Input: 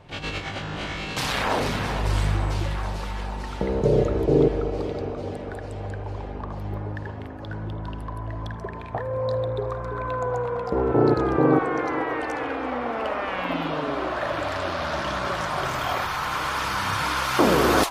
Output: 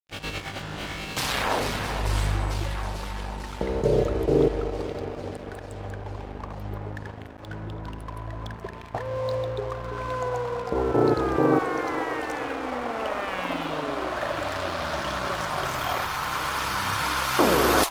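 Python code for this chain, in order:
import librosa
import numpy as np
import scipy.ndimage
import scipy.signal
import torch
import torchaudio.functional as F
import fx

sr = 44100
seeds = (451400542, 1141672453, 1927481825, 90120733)

y = fx.high_shelf(x, sr, hz=8300.0, db=7.0)
y = np.sign(y) * np.maximum(np.abs(y) - 10.0 ** (-39.5 / 20.0), 0.0)
y = fx.dynamic_eq(y, sr, hz=170.0, q=0.85, threshold_db=-34.0, ratio=4.0, max_db=-4)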